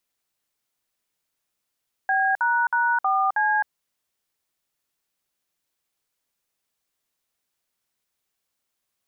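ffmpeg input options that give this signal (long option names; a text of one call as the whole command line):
ffmpeg -f lavfi -i "aevalsrc='0.0891*clip(min(mod(t,0.318),0.262-mod(t,0.318))/0.002,0,1)*(eq(floor(t/0.318),0)*(sin(2*PI*770*mod(t,0.318))+sin(2*PI*1633*mod(t,0.318)))+eq(floor(t/0.318),1)*(sin(2*PI*941*mod(t,0.318))+sin(2*PI*1477*mod(t,0.318)))+eq(floor(t/0.318),2)*(sin(2*PI*941*mod(t,0.318))+sin(2*PI*1477*mod(t,0.318)))+eq(floor(t/0.318),3)*(sin(2*PI*770*mod(t,0.318))+sin(2*PI*1209*mod(t,0.318)))+eq(floor(t/0.318),4)*(sin(2*PI*852*mod(t,0.318))+sin(2*PI*1633*mod(t,0.318))))':duration=1.59:sample_rate=44100" out.wav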